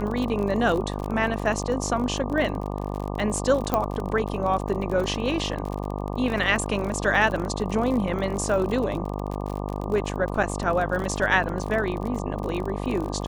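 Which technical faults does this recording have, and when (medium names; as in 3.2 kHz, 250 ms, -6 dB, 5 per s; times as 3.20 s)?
buzz 50 Hz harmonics 24 -30 dBFS
crackle 38 per s -29 dBFS
3.74 s: pop -9 dBFS
10.43–10.44 s: dropout 5.2 ms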